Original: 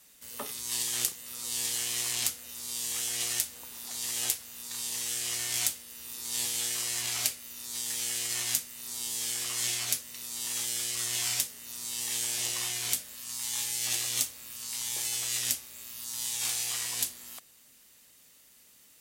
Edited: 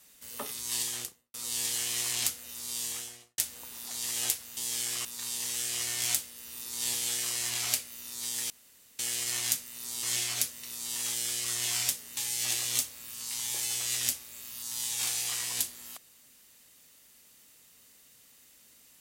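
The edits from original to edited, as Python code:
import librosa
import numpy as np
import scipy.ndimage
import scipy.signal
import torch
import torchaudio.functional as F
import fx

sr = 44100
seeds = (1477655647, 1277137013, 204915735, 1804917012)

y = fx.studio_fade_out(x, sr, start_s=0.8, length_s=0.54)
y = fx.studio_fade_out(y, sr, start_s=2.81, length_s=0.57)
y = fx.edit(y, sr, fx.insert_room_tone(at_s=8.02, length_s=0.49),
    fx.move(start_s=9.06, length_s=0.48, to_s=4.57),
    fx.cut(start_s=11.68, length_s=1.91), tone=tone)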